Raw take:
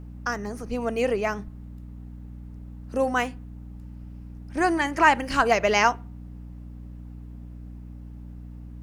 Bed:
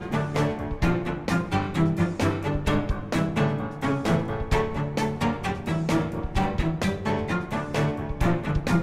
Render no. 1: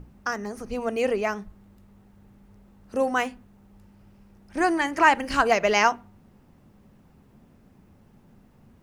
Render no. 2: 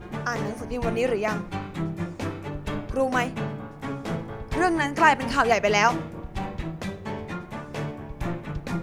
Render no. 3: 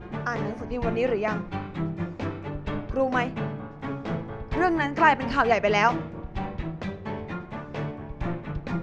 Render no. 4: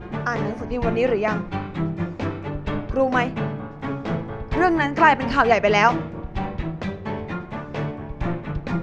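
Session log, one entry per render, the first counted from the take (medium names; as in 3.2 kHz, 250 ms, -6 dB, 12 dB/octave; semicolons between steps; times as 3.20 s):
hum notches 60/120/180/240/300 Hz
add bed -7 dB
distance through air 160 m
trim +4.5 dB; peak limiter -2 dBFS, peak gain reduction 1.5 dB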